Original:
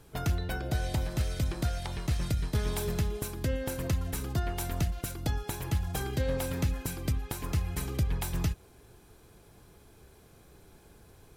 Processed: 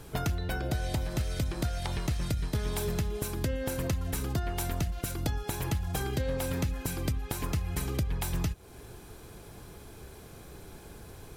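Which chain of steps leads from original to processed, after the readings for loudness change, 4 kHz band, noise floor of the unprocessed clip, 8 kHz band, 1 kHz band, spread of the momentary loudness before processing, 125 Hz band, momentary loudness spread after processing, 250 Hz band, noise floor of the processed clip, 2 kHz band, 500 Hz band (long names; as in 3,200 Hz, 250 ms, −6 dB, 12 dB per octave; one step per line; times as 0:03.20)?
0.0 dB, +1.0 dB, −57 dBFS, +1.0 dB, +1.0 dB, 3 LU, −0.5 dB, 16 LU, +1.0 dB, −49 dBFS, +1.0 dB, +1.0 dB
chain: downward compressor 3 to 1, threshold −39 dBFS, peak gain reduction 12 dB
level +8.5 dB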